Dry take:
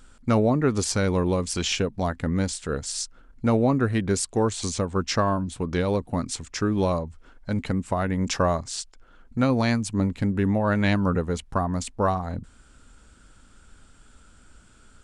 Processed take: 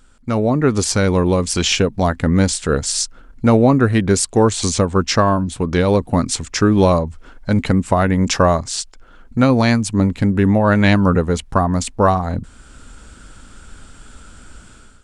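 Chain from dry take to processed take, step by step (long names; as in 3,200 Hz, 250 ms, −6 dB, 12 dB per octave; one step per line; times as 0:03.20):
automatic gain control gain up to 12.5 dB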